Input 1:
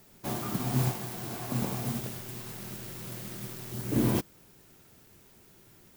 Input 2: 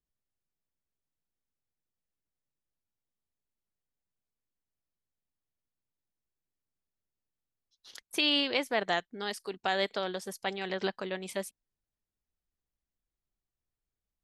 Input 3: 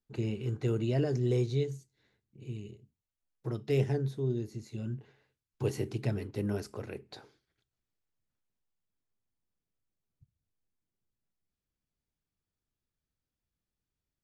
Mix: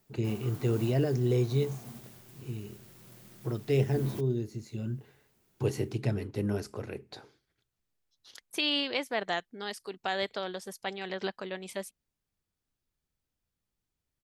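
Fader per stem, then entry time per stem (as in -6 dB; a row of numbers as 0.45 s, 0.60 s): -13.0 dB, -2.0 dB, +2.0 dB; 0.00 s, 0.40 s, 0.00 s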